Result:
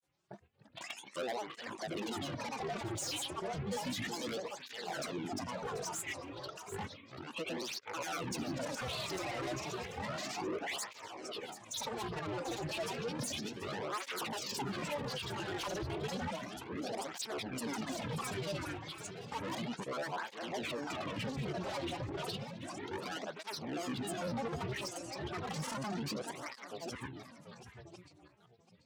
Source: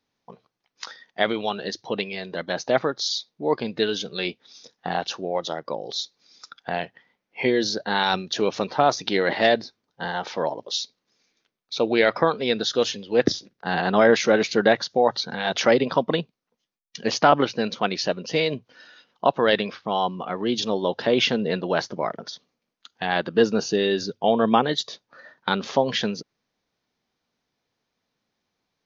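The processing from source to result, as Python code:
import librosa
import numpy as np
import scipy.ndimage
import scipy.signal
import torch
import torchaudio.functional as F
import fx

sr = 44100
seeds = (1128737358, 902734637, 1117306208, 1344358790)

p1 = fx.reverse_delay_fb(x, sr, ms=500, feedback_pct=44, wet_db=-12)
p2 = fx.peak_eq(p1, sr, hz=130.0, db=9.5, octaves=0.48)
p3 = fx.over_compress(p2, sr, threshold_db=-30.0, ratio=-1.0)
p4 = p2 + F.gain(torch.from_numpy(p3), -2.0).numpy()
p5 = fx.granulator(p4, sr, seeds[0], grain_ms=100.0, per_s=20.0, spray_ms=100.0, spread_st=12)
p6 = 10.0 ** (-25.0 / 20.0) * np.tanh(p5 / 10.0 ** (-25.0 / 20.0))
p7 = p6 + fx.echo_single(p6, sr, ms=736, db=-11.5, dry=0)
p8 = fx.flanger_cancel(p7, sr, hz=0.32, depth_ms=4.8)
y = F.gain(torch.from_numpy(p8), -8.0).numpy()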